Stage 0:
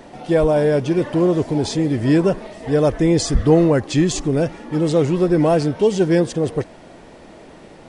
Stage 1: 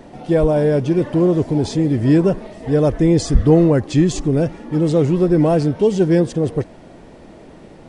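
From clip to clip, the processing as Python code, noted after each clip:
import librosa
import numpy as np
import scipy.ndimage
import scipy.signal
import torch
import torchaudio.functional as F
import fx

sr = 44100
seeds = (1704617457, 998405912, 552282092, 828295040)

y = fx.low_shelf(x, sr, hz=470.0, db=7.5)
y = y * librosa.db_to_amplitude(-3.5)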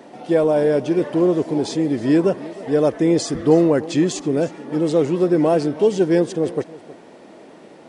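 y = scipy.signal.sosfilt(scipy.signal.butter(2, 260.0, 'highpass', fs=sr, output='sos'), x)
y = y + 10.0 ** (-18.5 / 20.0) * np.pad(y, (int(317 * sr / 1000.0), 0))[:len(y)]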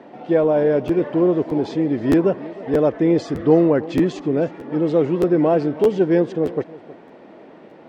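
y = scipy.signal.sosfilt(scipy.signal.butter(2, 2700.0, 'lowpass', fs=sr, output='sos'), x)
y = fx.buffer_crackle(y, sr, first_s=0.87, period_s=0.62, block=512, kind='repeat')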